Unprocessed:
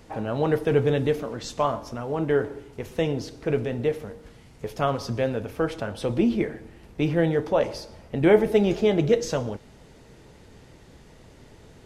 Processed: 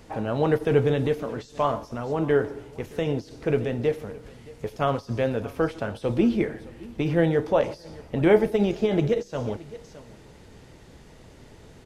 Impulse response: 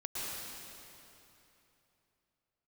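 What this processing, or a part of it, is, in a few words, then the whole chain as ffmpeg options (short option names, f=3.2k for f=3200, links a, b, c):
de-esser from a sidechain: -filter_complex "[0:a]aecho=1:1:619:0.0841,asplit=2[a][b];[b]highpass=f=5.3k:w=0.5412,highpass=f=5.3k:w=1.3066,apad=whole_len=550192[c];[a][c]sidechaincompress=threshold=-53dB:ratio=16:attack=3.4:release=44,volume=1dB"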